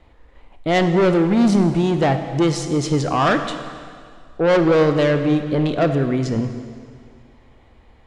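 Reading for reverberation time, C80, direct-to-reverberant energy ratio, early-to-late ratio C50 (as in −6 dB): 2.1 s, 9.5 dB, 7.5 dB, 8.5 dB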